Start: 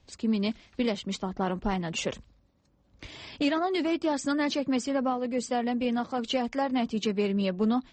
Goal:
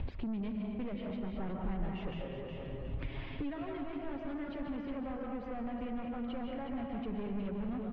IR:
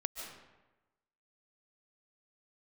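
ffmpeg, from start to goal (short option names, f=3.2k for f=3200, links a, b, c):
-filter_complex "[0:a]acompressor=mode=upward:threshold=-40dB:ratio=2.5[a];[1:a]atrim=start_sample=2205[b];[a][b]afir=irnorm=-1:irlink=0,asoftclip=type=tanh:threshold=-29.5dB,asettb=1/sr,asplit=3[c][d][e];[c]atrim=end=2.114[f];[d]atrim=start=2.11:end=4.44,asetpts=PTS-STARTPTS,afade=t=in:d=0.004:c=qsin,afade=t=out:st=2.326:d=0.004:c=qsin,aecho=1:1:7.4:0.69,atrim=end_sample=102753[g];[e]atrim=start=4.436[h];[f][g]acrossfade=d=0.004:c1=hsin:c2=qsin[i];[i][h]acrossfade=d=0.004:c1=qsin:c2=hsin,aecho=1:1:364|728|1092:0.355|0.0781|0.0172,acompressor=threshold=-46dB:ratio=5,lowpass=f=3k:w=0.5412,lowpass=f=3k:w=1.3066,aemphasis=mode=reproduction:type=bsi,volume=3.5dB"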